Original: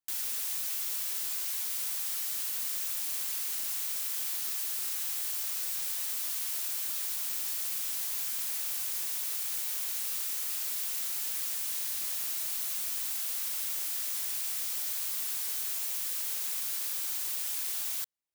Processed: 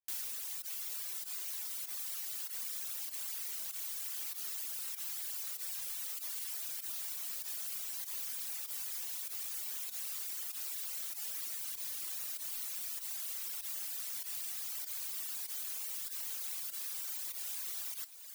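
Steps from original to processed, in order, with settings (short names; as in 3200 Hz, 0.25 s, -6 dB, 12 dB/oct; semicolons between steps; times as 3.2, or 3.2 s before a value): pump 97 bpm, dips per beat 1, -13 dB, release 60 ms; diffused feedback echo 0.767 s, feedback 63%, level -8 dB; reverb removal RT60 1.5 s; gain -4.5 dB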